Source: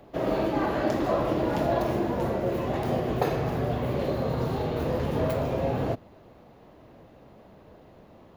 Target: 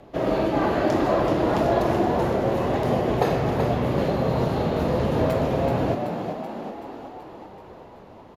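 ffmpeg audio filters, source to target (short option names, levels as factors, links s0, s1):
-filter_complex "[0:a]lowpass=12000,asplit=9[s0][s1][s2][s3][s4][s5][s6][s7][s8];[s1]adelay=380,afreqshift=49,volume=0.447[s9];[s2]adelay=760,afreqshift=98,volume=0.272[s10];[s3]adelay=1140,afreqshift=147,volume=0.166[s11];[s4]adelay=1520,afreqshift=196,volume=0.101[s12];[s5]adelay=1900,afreqshift=245,volume=0.0617[s13];[s6]adelay=2280,afreqshift=294,volume=0.0376[s14];[s7]adelay=2660,afreqshift=343,volume=0.0229[s15];[s8]adelay=3040,afreqshift=392,volume=0.014[s16];[s0][s9][s10][s11][s12][s13][s14][s15][s16]amix=inputs=9:normalize=0,volume=1.5"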